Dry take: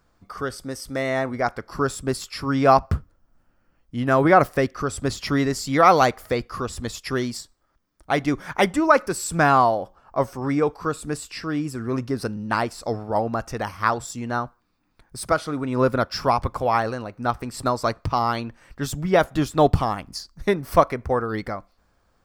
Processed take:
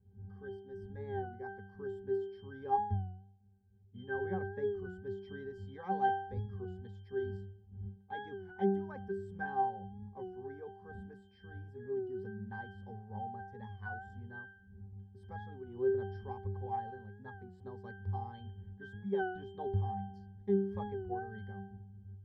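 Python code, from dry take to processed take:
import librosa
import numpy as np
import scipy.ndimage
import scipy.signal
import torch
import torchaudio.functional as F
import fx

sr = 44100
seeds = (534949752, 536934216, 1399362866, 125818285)

y = fx.dmg_wind(x, sr, seeds[0], corner_hz=110.0, level_db=-38.0)
y = fx.octave_resonator(y, sr, note='G', decay_s=0.67)
y = fx.record_warp(y, sr, rpm=33.33, depth_cents=100.0)
y = y * librosa.db_to_amplitude(2.0)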